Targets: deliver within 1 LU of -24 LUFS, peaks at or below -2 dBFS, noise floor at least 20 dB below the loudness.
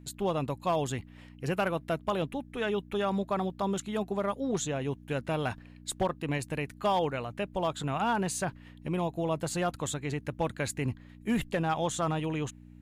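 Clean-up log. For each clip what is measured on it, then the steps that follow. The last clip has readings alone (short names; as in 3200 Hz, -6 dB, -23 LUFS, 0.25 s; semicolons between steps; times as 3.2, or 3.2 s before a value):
clipped 0.2%; flat tops at -20.5 dBFS; hum 60 Hz; harmonics up to 300 Hz; hum level -49 dBFS; loudness -32.0 LUFS; peak -20.5 dBFS; loudness target -24.0 LUFS
-> clip repair -20.5 dBFS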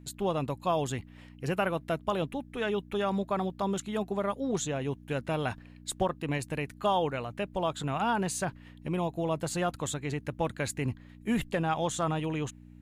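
clipped 0.0%; hum 60 Hz; harmonics up to 300 Hz; hum level -49 dBFS
-> de-hum 60 Hz, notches 5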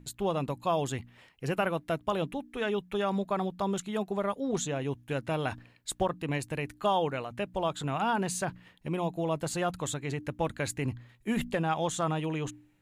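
hum none; loudness -32.0 LUFS; peak -16.0 dBFS; loudness target -24.0 LUFS
-> gain +8 dB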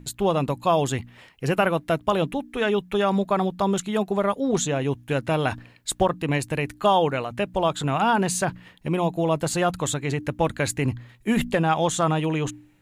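loudness -24.0 LUFS; peak -8.0 dBFS; noise floor -54 dBFS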